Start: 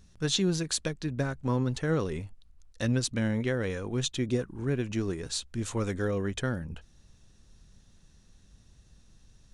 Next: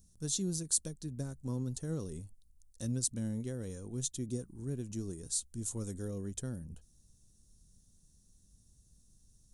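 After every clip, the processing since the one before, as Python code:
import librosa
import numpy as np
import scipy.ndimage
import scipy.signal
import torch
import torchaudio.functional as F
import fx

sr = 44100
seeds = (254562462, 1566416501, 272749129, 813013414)

y = fx.curve_eq(x, sr, hz=(220.0, 2300.0, 9200.0), db=(0, -17, 14))
y = y * librosa.db_to_amplitude(-7.5)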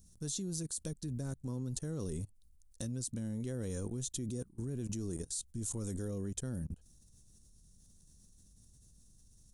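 y = fx.level_steps(x, sr, step_db=23)
y = y * librosa.db_to_amplitude(8.0)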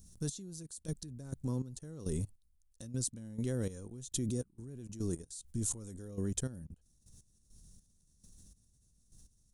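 y = fx.step_gate(x, sr, bpm=102, pattern='xx....x..xx...', floor_db=-12.0, edge_ms=4.5)
y = y * librosa.db_to_amplitude(4.0)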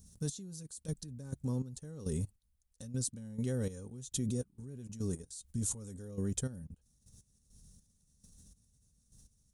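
y = fx.notch_comb(x, sr, f0_hz=340.0)
y = y * librosa.db_to_amplitude(1.0)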